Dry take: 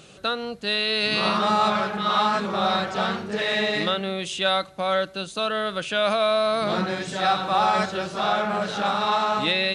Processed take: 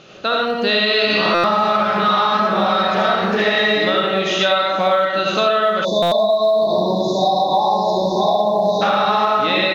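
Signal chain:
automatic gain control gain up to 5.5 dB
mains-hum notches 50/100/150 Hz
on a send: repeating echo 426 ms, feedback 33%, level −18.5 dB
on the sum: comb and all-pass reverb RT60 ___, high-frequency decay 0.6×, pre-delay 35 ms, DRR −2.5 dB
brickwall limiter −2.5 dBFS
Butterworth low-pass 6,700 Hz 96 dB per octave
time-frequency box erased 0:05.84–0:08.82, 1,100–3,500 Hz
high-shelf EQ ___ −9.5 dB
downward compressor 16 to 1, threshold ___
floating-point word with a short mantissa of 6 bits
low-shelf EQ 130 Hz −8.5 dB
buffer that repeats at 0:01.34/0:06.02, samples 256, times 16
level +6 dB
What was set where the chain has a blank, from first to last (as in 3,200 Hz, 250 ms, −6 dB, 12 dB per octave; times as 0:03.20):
0.75 s, 4,800 Hz, −18 dBFS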